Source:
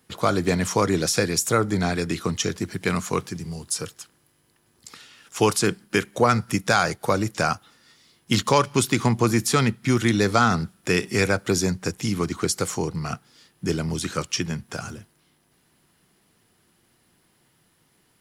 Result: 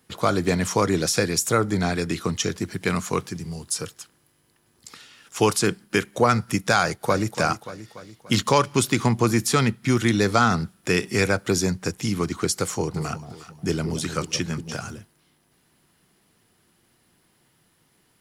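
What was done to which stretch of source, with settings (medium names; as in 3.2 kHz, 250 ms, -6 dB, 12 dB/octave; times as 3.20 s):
6.81–7.35 s: echo throw 290 ms, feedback 55%, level -10.5 dB
12.58–14.85 s: echo whose repeats swap between lows and highs 179 ms, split 810 Hz, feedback 55%, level -8.5 dB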